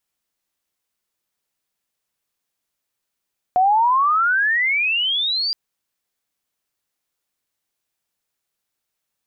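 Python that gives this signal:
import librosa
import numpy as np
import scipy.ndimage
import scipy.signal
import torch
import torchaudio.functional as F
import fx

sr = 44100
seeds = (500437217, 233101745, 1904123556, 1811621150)

y = fx.riser_tone(sr, length_s=1.97, level_db=-12, wave='sine', hz=716.0, rise_st=33.0, swell_db=-7)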